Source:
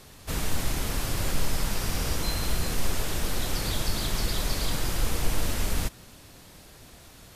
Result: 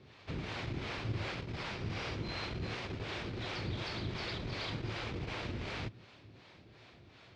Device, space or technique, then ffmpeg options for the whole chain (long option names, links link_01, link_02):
guitar amplifier with harmonic tremolo: -filter_complex "[0:a]acrossover=split=440[link_01][link_02];[link_01]aeval=exprs='val(0)*(1-0.7/2+0.7/2*cos(2*PI*2.7*n/s))':channel_layout=same[link_03];[link_02]aeval=exprs='val(0)*(1-0.7/2-0.7/2*cos(2*PI*2.7*n/s))':channel_layout=same[link_04];[link_03][link_04]amix=inputs=2:normalize=0,asoftclip=type=tanh:threshold=-19dB,highpass=86,equalizer=frequency=110:width_type=q:width=4:gain=8,equalizer=frequency=360:width_type=q:width=4:gain=5,equalizer=frequency=2300:width_type=q:width=4:gain=5,lowpass=frequency=4300:width=0.5412,lowpass=frequency=4300:width=1.3066,volume=-4dB"